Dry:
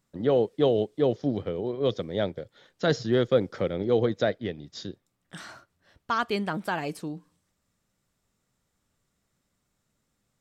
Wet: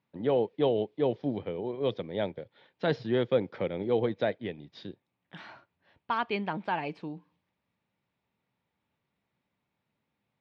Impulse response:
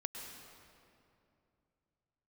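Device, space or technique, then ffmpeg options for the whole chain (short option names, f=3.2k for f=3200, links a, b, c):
guitar cabinet: -af "highpass=100,equalizer=f=900:t=q:w=4:g=7,equalizer=f=1.3k:t=q:w=4:g=-4,equalizer=f=2.4k:t=q:w=4:g=6,lowpass=f=3.8k:w=0.5412,lowpass=f=3.8k:w=1.3066,volume=-4dB"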